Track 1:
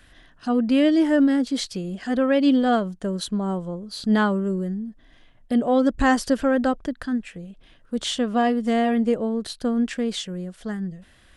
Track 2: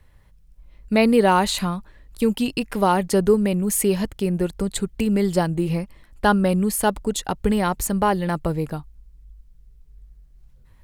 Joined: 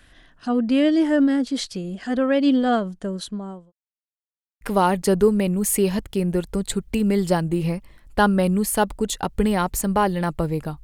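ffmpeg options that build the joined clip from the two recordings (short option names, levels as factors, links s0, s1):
-filter_complex "[0:a]apad=whole_dur=10.83,atrim=end=10.83,asplit=2[s0][s1];[s0]atrim=end=3.72,asetpts=PTS-STARTPTS,afade=t=out:st=2.77:d=0.95:c=qsin[s2];[s1]atrim=start=3.72:end=4.61,asetpts=PTS-STARTPTS,volume=0[s3];[1:a]atrim=start=2.67:end=8.89,asetpts=PTS-STARTPTS,afade=t=in:d=0.004:c=hsin[s4];[s2][s3][s4]concat=n=3:v=0:a=1"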